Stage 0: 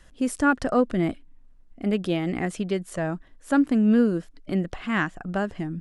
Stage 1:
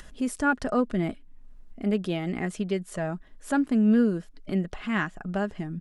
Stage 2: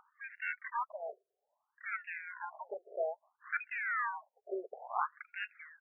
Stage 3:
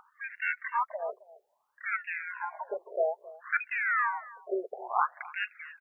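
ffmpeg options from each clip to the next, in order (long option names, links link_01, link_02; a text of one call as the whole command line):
ffmpeg -i in.wav -filter_complex "[0:a]aecho=1:1:4.8:0.31,asplit=2[link_01][link_02];[link_02]acompressor=mode=upward:threshold=-24dB:ratio=2.5,volume=-2dB[link_03];[link_01][link_03]amix=inputs=2:normalize=0,volume=-8.5dB" out.wav
ffmpeg -i in.wav -af "dynaudnorm=framelen=190:gausssize=3:maxgain=5dB,acrusher=samples=24:mix=1:aa=0.000001:lfo=1:lforange=24:lforate=0.52,afftfilt=real='re*between(b*sr/1024,510*pow(2000/510,0.5+0.5*sin(2*PI*0.6*pts/sr))/1.41,510*pow(2000/510,0.5+0.5*sin(2*PI*0.6*pts/sr))*1.41)':imag='im*between(b*sr/1024,510*pow(2000/510,0.5+0.5*sin(2*PI*0.6*pts/sr))/1.41,510*pow(2000/510,0.5+0.5*sin(2*PI*0.6*pts/sr))*1.41)':win_size=1024:overlap=0.75,volume=-6.5dB" out.wav
ffmpeg -i in.wav -af "aecho=1:1:267:0.106,volume=7dB" out.wav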